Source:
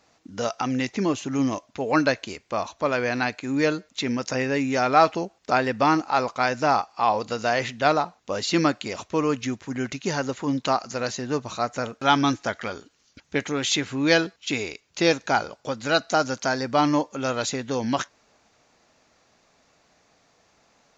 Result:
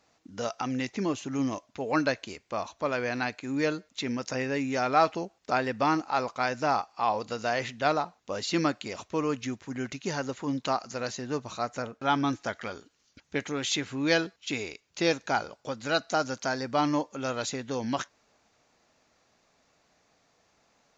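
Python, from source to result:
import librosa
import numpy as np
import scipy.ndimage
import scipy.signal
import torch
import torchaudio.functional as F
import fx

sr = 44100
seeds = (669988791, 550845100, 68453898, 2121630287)

y = fx.high_shelf(x, sr, hz=3000.0, db=-8.5, at=(11.82, 12.33))
y = y * librosa.db_to_amplitude(-5.5)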